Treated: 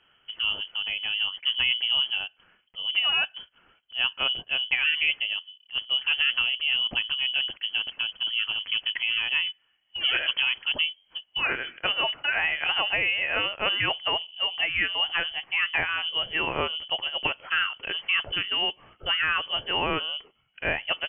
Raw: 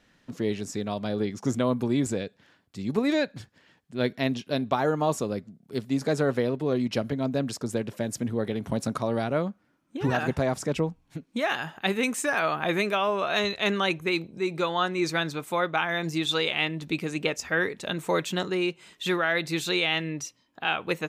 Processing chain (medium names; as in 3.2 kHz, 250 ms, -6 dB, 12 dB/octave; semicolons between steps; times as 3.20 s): frequency inversion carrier 3.2 kHz